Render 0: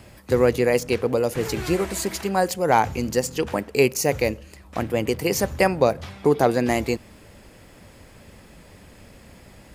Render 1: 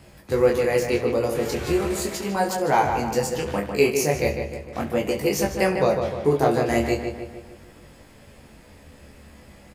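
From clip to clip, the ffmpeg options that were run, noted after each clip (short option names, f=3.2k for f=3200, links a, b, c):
-filter_complex "[0:a]asplit=2[a][b];[b]aecho=0:1:14|69:0.531|0.2[c];[a][c]amix=inputs=2:normalize=0,flanger=delay=20:depth=6.3:speed=0.38,asplit=2[d][e];[e]adelay=151,lowpass=f=3.2k:p=1,volume=-6dB,asplit=2[f][g];[g]adelay=151,lowpass=f=3.2k:p=1,volume=0.53,asplit=2[h][i];[i]adelay=151,lowpass=f=3.2k:p=1,volume=0.53,asplit=2[j][k];[k]adelay=151,lowpass=f=3.2k:p=1,volume=0.53,asplit=2[l][m];[m]adelay=151,lowpass=f=3.2k:p=1,volume=0.53,asplit=2[n][o];[o]adelay=151,lowpass=f=3.2k:p=1,volume=0.53,asplit=2[p][q];[q]adelay=151,lowpass=f=3.2k:p=1,volume=0.53[r];[f][h][j][l][n][p][r]amix=inputs=7:normalize=0[s];[d][s]amix=inputs=2:normalize=0"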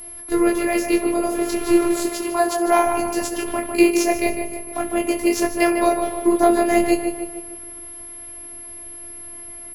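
-af "aeval=exprs='val(0)+0.0398*sin(2*PI*11000*n/s)':c=same,afftfilt=real='hypot(re,im)*cos(PI*b)':imag='0':win_size=512:overlap=0.75,adynamicsmooth=sensitivity=6:basefreq=3.9k,volume=7.5dB"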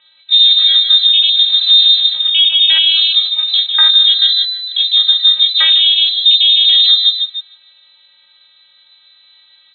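-af "afwtdn=0.0794,lowpass=f=3.4k:t=q:w=0.5098,lowpass=f=3.4k:t=q:w=0.6013,lowpass=f=3.4k:t=q:w=0.9,lowpass=f=3.4k:t=q:w=2.563,afreqshift=-4000,alimiter=level_in=13dB:limit=-1dB:release=50:level=0:latency=1,volume=-1dB"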